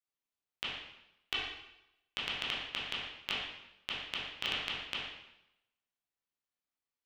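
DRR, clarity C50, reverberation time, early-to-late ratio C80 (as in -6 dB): -7.0 dB, 0.0 dB, 0.85 s, 3.0 dB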